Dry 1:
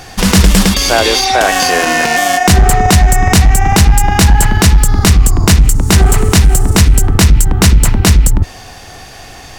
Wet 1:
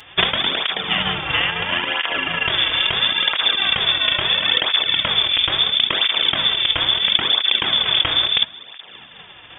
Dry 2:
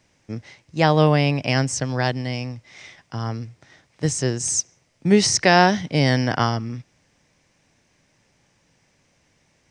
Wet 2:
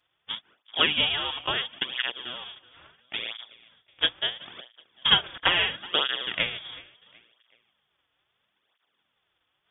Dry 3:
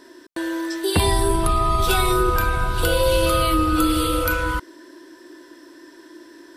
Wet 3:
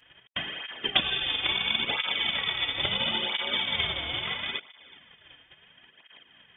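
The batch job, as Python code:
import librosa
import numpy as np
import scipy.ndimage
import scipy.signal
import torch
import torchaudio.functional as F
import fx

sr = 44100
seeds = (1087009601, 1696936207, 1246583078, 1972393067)

p1 = fx.spec_flatten(x, sr, power=0.52)
p2 = fx.over_compress(p1, sr, threshold_db=-10.0, ratio=-0.5)
p3 = p1 + (p2 * librosa.db_to_amplitude(-1.0))
p4 = fx.transient(p3, sr, attack_db=10, sustain_db=-6)
p5 = p4 + fx.echo_feedback(p4, sr, ms=374, feedback_pct=39, wet_db=-21.5, dry=0)
p6 = fx.freq_invert(p5, sr, carrier_hz=3500)
p7 = fx.flanger_cancel(p6, sr, hz=0.74, depth_ms=5.3)
y = p7 * librosa.db_to_amplitude(-13.0)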